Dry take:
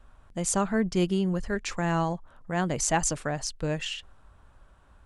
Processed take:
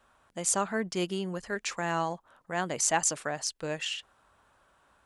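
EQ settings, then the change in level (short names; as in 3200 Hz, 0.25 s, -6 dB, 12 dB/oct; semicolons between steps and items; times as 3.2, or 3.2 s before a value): HPF 510 Hz 6 dB/oct; high shelf 9700 Hz +3.5 dB; 0.0 dB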